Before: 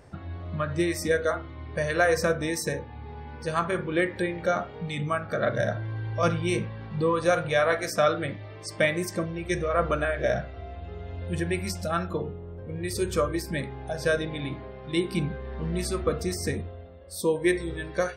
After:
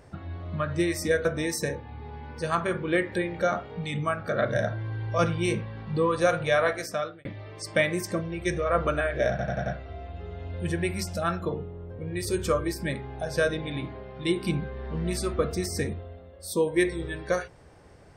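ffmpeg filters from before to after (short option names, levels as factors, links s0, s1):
-filter_complex "[0:a]asplit=7[s0][s1][s2][s3][s4][s5][s6];[s0]atrim=end=1.252[s7];[s1]atrim=start=2.288:end=8.29,asetpts=PTS-STARTPTS,afade=t=out:st=5.372:d=0.63[s8];[s2]atrim=start=8.29:end=10.432,asetpts=PTS-STARTPTS,afade=t=in:d=0.004:c=hsin[s9];[s3]atrim=start=10.338:end=10.432[s10];[s4]atrim=start=10.338:end=10.432[s11];[s5]atrim=start=10.338:end=10.432[s12];[s6]atrim=start=10.338[s13];[s8][s9]concat=n=2:v=0:a=1[s14];[s7][s14]acrossfade=d=0.004:c1=hsin:c2=hsin[s15];[s15][s10]acrossfade=d=0.004:c1=hsin:c2=hsin[s16];[s16][s11]acrossfade=d=0.004:c1=hsin:c2=hsin[s17];[s17][s12]acrossfade=d=0.004:c1=hsin:c2=hsin[s18];[s18][s13]acrossfade=d=0.004:c1=hsin:c2=hsin"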